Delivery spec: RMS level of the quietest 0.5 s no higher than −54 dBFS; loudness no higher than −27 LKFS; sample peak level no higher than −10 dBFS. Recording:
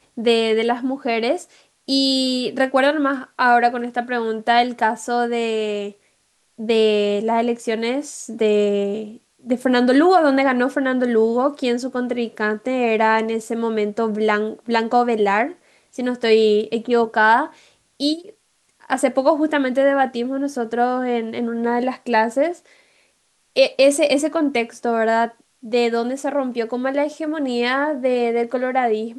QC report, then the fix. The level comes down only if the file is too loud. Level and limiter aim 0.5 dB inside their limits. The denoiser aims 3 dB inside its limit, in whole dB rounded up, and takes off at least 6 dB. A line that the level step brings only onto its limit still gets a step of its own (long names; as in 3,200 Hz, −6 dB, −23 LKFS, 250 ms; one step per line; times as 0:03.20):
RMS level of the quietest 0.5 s −64 dBFS: in spec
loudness −19.5 LKFS: out of spec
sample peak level −4.0 dBFS: out of spec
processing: level −8 dB